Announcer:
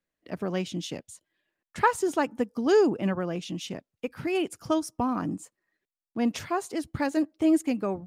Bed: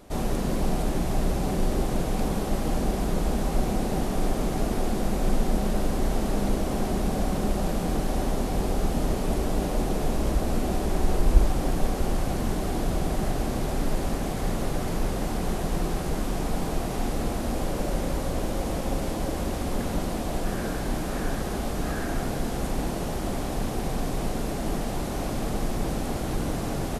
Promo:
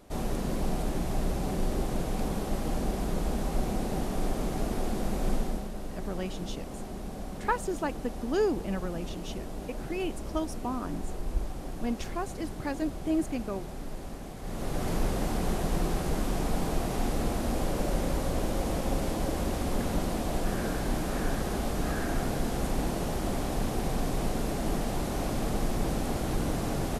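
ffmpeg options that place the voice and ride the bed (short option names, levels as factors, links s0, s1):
-filter_complex "[0:a]adelay=5650,volume=0.501[s0];[1:a]volume=2.11,afade=t=out:st=5.33:d=0.36:silence=0.398107,afade=t=in:st=14.42:d=0.48:silence=0.281838[s1];[s0][s1]amix=inputs=2:normalize=0"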